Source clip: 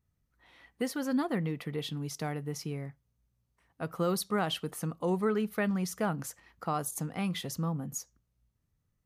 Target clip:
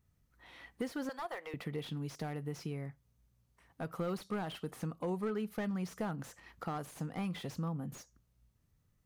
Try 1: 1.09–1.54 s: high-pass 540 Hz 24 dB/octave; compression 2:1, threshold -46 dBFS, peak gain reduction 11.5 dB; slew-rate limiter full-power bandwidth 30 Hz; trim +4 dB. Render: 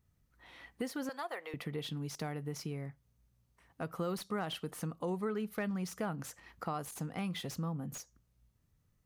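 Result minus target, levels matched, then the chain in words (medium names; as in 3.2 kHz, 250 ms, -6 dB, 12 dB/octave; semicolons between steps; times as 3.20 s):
slew-rate limiter: distortion -6 dB
1.09–1.54 s: high-pass 540 Hz 24 dB/octave; compression 2:1, threshold -46 dBFS, peak gain reduction 11.5 dB; slew-rate limiter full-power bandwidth 11 Hz; trim +4 dB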